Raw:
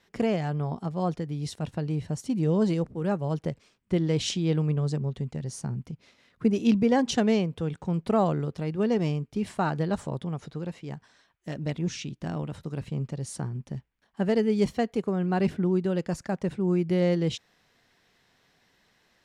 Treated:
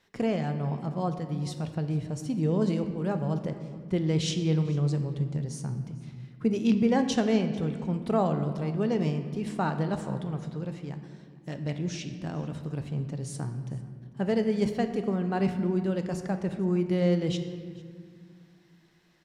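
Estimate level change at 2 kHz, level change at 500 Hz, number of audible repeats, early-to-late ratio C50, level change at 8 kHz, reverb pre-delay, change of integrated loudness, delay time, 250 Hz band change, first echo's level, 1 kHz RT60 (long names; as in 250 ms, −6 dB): −2.0 dB, −2.0 dB, 1, 9.0 dB, −2.0 dB, 5 ms, −1.0 dB, 446 ms, −1.0 dB, −22.5 dB, 1.7 s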